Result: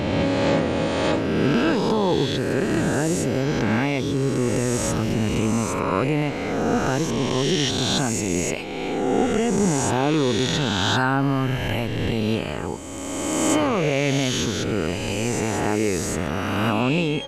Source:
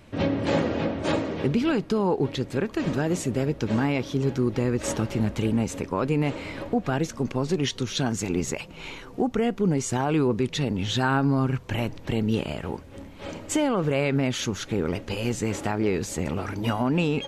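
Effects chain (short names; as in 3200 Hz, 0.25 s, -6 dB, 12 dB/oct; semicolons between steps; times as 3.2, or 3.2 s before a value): spectral swells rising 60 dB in 2.27 s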